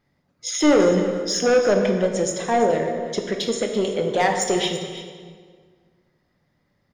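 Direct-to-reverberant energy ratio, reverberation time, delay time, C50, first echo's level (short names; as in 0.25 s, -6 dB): 3.0 dB, 1.7 s, 0.335 s, 5.0 dB, -14.5 dB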